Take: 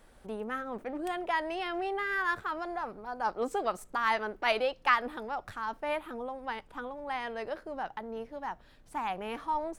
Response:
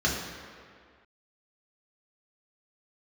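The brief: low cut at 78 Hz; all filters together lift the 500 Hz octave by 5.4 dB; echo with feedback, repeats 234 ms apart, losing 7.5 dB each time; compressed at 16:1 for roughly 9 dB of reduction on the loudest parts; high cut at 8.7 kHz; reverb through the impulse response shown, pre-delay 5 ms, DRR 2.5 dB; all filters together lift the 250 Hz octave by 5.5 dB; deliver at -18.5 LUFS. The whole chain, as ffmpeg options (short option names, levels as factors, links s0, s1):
-filter_complex "[0:a]highpass=78,lowpass=8700,equalizer=f=250:t=o:g=5,equalizer=f=500:t=o:g=5.5,acompressor=threshold=0.0398:ratio=16,aecho=1:1:234|468|702|936|1170:0.422|0.177|0.0744|0.0312|0.0131,asplit=2[s0][s1];[1:a]atrim=start_sample=2205,adelay=5[s2];[s1][s2]afir=irnorm=-1:irlink=0,volume=0.178[s3];[s0][s3]amix=inputs=2:normalize=0,volume=4.47"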